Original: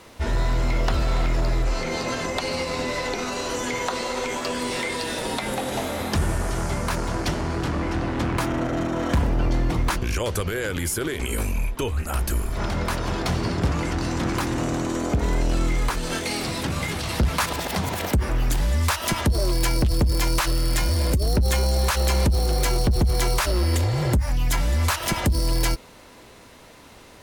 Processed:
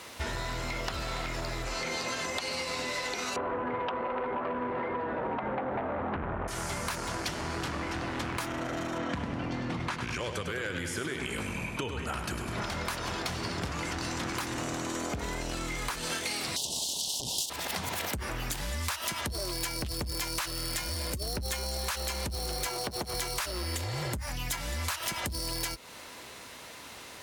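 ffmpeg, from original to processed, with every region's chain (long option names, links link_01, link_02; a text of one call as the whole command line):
ffmpeg -i in.wav -filter_complex "[0:a]asettb=1/sr,asplit=3[link_01][link_02][link_03];[link_01]atrim=end=3.364[link_04];[link_02]atrim=start=3.36:end=6.48,asetpts=PTS-STARTPTS,afade=type=in:duration=0.004:curve=qsin,afade=type=out:start_time=3.116:duration=0.004:curve=qsin,lowpass=frequency=1300:width=0.5412,lowpass=frequency=1300:width=1.3066,aeval=exprs='0.178*sin(PI/2*2*val(0)/0.178)':channel_layout=same[link_05];[link_03]atrim=start=6.476[link_06];[link_04][link_05]acrossfade=duration=0.004:curve1=hsin:curve2=qsin[link_07];[link_07][link_06]acrossfade=duration=0.004:curve1=qsin:curve2=hsin,asettb=1/sr,asplit=3[link_08][link_09][link_10];[link_08]atrim=end=8.984[link_11];[link_09]atrim=start=8.98:end=12.62,asetpts=PTS-STARTPTS,afade=type=in:duration=0.004:curve=qsin,afade=type=out:start_time=3.636:duration=0.004:curve=qsin,highpass=130,lowpass=7900,bass=frequency=250:gain=8,treble=frequency=4000:gain=-7,aecho=1:1:101|202|303|404|505|606|707:0.422|0.232|0.128|0.0702|0.0386|0.0212|0.0117,atrim=end_sample=160524[link_12];[link_10]atrim=start=12.616[link_13];[link_11][link_12]acrossfade=duration=0.004:curve1=hsin:curve2=qsin[link_14];[link_14][link_13]acrossfade=duration=0.004:curve1=qsin:curve2=hsin,asettb=1/sr,asplit=3[link_15][link_16][link_17];[link_15]atrim=end=16.564[link_18];[link_16]atrim=start=16.56:end=17.5,asetpts=PTS-STARTPTS,afade=type=in:duration=0.004:curve=qsin,afade=type=out:start_time=0.936:duration=0.004:curve=qsin,aeval=exprs='abs(val(0))':channel_layout=same,asuperstop=centerf=1700:order=12:qfactor=0.85,equalizer=frequency=6200:width_type=o:width=2.4:gain=12[link_19];[link_17]atrim=start=17.496[link_20];[link_18][link_19]acrossfade=duration=0.004:curve1=hsin:curve2=qsin[link_21];[link_21][link_20]acrossfade=duration=0.004:curve1=qsin:curve2=hsin,asettb=1/sr,asplit=3[link_22][link_23][link_24];[link_22]atrim=end=22.664[link_25];[link_23]atrim=start=22.66:end=23.14,asetpts=PTS-STARTPTS,afade=type=in:duration=0.004:curve=qsin,afade=type=out:start_time=0.476:duration=0.004:curve=qsin,highpass=frequency=220:poles=1,equalizer=frequency=800:width=0.55:gain=5[link_26];[link_24]atrim=start=23.136[link_27];[link_25][link_26]acrossfade=duration=0.004:curve1=hsin:curve2=qsin[link_28];[link_28][link_27]acrossfade=duration=0.004:curve1=qsin:curve2=hsin,highpass=57,tiltshelf=frequency=790:gain=-5,acompressor=threshold=-31dB:ratio=6" out.wav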